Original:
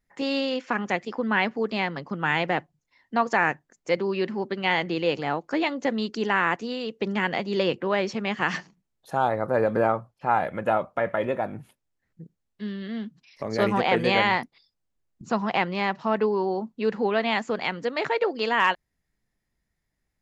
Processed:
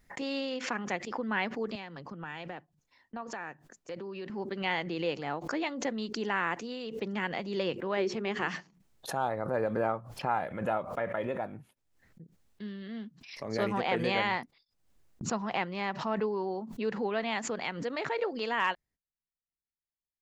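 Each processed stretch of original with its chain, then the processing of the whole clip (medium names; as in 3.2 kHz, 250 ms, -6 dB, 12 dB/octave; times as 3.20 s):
1.75–4.30 s: band-stop 2.1 kHz + compression 4:1, threshold -29 dBFS + three bands expanded up and down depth 70%
7.97–8.48 s: peaking EQ 390 Hz +9 dB 0.4 oct + hum notches 60/120/180/240/300/360/420 Hz
whole clip: gate -52 dBFS, range -20 dB; swell ahead of each attack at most 82 dB/s; trim -8 dB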